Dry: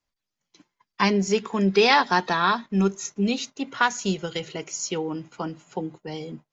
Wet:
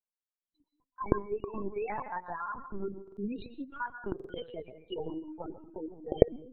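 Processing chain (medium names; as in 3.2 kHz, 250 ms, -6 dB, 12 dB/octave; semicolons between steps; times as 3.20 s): elliptic high-pass 210 Hz, stop band 40 dB; gate -43 dBFS, range -10 dB; compression 3:1, threshold -32 dBFS, peak gain reduction 13 dB; loudest bins only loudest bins 8; tremolo 12 Hz, depth 42%; reverberation RT60 0.45 s, pre-delay 119 ms, DRR 9 dB; LPC vocoder at 8 kHz pitch kept; buffer glitch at 3.03/4.15 s, samples 2048, times 2; trim -1 dB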